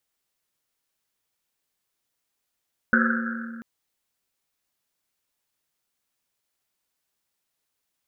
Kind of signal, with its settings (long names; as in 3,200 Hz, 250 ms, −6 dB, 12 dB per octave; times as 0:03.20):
drum after Risset length 0.69 s, pitch 230 Hz, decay 2.65 s, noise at 1,500 Hz, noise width 380 Hz, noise 50%